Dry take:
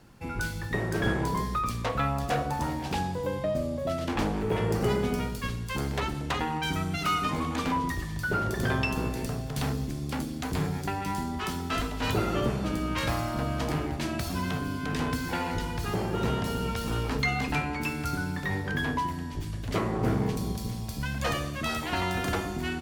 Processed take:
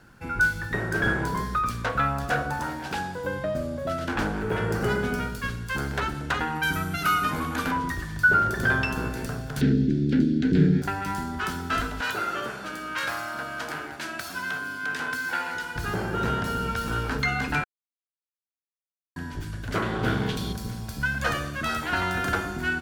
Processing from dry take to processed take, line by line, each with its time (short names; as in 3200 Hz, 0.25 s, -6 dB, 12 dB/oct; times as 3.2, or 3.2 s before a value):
2.59–3.25 low shelf 180 Hz -8.5 dB
6.55–7.71 bell 12000 Hz +12.5 dB 0.43 oct
9.61–10.82 EQ curve 100 Hz 0 dB, 180 Hz +14 dB, 390 Hz +12 dB, 720 Hz -13 dB, 1100 Hz -22 dB, 1700 Hz -2 dB, 2600 Hz -2 dB, 3800 Hz +1 dB, 13000 Hz -25 dB
12.01–15.76 HPF 820 Hz 6 dB/oct
17.64–19.16 mute
19.82–20.53 bell 3400 Hz +14.5 dB 0.76 oct
whole clip: bell 1500 Hz +14 dB 0.31 oct